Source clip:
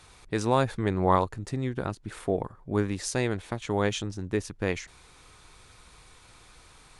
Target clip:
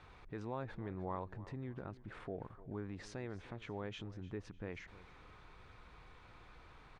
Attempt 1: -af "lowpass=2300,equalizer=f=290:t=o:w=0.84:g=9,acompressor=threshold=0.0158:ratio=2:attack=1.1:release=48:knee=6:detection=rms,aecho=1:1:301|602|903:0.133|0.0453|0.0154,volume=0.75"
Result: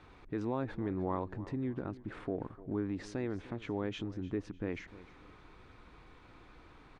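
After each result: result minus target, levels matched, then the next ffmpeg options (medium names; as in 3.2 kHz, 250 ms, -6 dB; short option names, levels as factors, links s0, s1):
compression: peak gain reduction -4.5 dB; 250 Hz band +2.5 dB
-af "lowpass=2300,equalizer=f=290:t=o:w=0.84:g=9,acompressor=threshold=0.00447:ratio=2:attack=1.1:release=48:knee=6:detection=rms,aecho=1:1:301|602|903:0.133|0.0453|0.0154,volume=0.75"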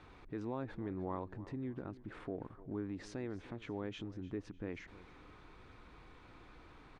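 250 Hz band +2.5 dB
-af "lowpass=2300,acompressor=threshold=0.00447:ratio=2:attack=1.1:release=48:knee=6:detection=rms,aecho=1:1:301|602|903:0.133|0.0453|0.0154,volume=0.75"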